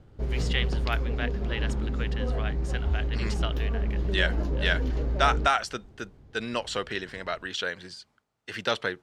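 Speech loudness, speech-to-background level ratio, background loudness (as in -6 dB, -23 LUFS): -31.5 LUFS, -1.5 dB, -30.0 LUFS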